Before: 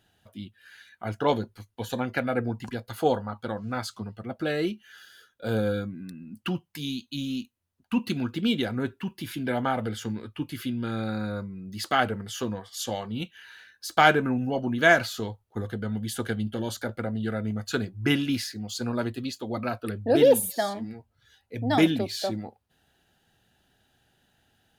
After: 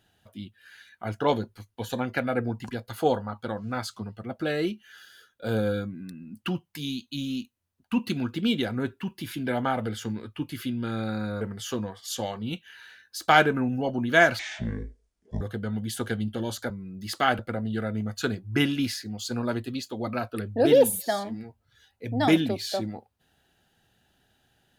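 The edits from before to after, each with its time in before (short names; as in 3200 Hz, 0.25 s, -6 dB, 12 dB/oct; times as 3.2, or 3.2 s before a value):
11.41–12.1 move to 16.89
15.08–15.6 speed 51%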